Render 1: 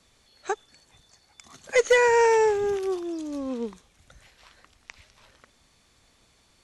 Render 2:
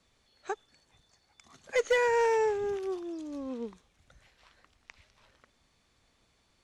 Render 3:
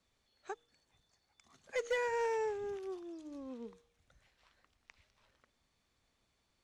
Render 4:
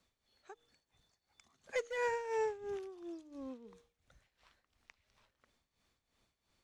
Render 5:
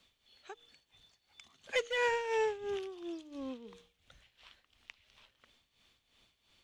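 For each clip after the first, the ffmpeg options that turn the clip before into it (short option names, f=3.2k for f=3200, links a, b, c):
-af "highshelf=f=6.8k:g=-8,asoftclip=type=hard:threshold=-14dB,volume=-6.5dB"
-af "bandreject=f=157.6:t=h:w=4,bandreject=f=315.2:t=h:w=4,bandreject=f=472.8:t=h:w=4,volume=-8.5dB"
-af "tremolo=f=2.9:d=0.76,volume=2dB"
-filter_complex "[0:a]equalizer=f=3.1k:w=1.6:g=12,bandreject=f=60:t=h:w=6,bandreject=f=120:t=h:w=6,bandreject=f=180:t=h:w=6,asplit=2[a][b];[b]asoftclip=type=tanh:threshold=-34dB,volume=-4dB[c];[a][c]amix=inputs=2:normalize=0"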